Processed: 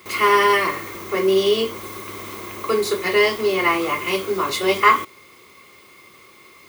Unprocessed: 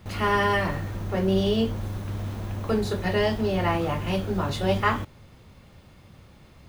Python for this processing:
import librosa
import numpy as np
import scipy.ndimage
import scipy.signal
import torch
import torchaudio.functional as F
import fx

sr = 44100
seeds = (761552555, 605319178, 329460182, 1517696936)

y = fx.tilt_eq(x, sr, slope=4.5)
y = fx.small_body(y, sr, hz=(380.0, 1100.0, 2100.0), ring_ms=25, db=17)
y = y * librosa.db_to_amplitude(-1.0)